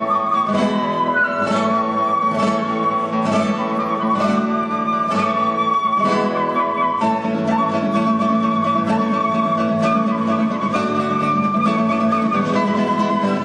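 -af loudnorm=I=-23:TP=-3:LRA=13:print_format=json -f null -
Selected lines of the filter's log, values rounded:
"input_i" : "-18.0",
"input_tp" : "-5.9",
"input_lra" : "0.5",
"input_thresh" : "-28.0",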